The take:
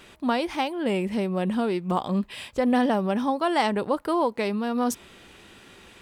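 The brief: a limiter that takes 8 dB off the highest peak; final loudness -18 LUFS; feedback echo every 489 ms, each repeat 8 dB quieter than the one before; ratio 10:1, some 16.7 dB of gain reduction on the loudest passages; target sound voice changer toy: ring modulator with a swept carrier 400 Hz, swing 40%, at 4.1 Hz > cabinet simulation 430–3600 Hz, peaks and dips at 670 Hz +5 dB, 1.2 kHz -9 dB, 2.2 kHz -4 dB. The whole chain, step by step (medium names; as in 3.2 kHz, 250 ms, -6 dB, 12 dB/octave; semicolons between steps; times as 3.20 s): compression 10:1, threshold -36 dBFS; peak limiter -33.5 dBFS; feedback delay 489 ms, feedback 40%, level -8 dB; ring modulator with a swept carrier 400 Hz, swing 40%, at 4.1 Hz; cabinet simulation 430–3600 Hz, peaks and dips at 670 Hz +5 dB, 1.2 kHz -9 dB, 2.2 kHz -4 dB; trim +29 dB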